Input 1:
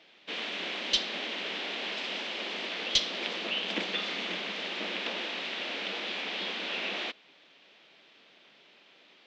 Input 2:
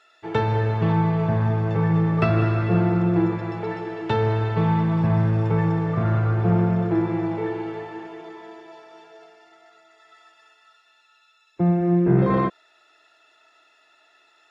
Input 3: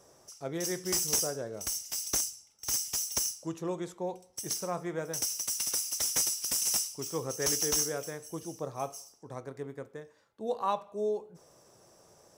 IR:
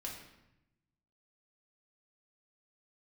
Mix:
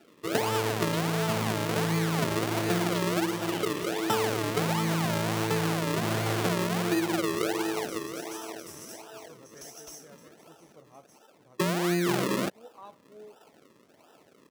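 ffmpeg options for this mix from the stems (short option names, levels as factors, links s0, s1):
-filter_complex "[0:a]volume=0.237[s0];[1:a]acrusher=samples=40:mix=1:aa=0.000001:lfo=1:lforange=40:lforate=1.4,highpass=220,volume=1.26[s1];[2:a]adelay=2150,volume=0.133[s2];[s0][s1][s2]amix=inputs=3:normalize=0,acompressor=threshold=0.0708:ratio=6"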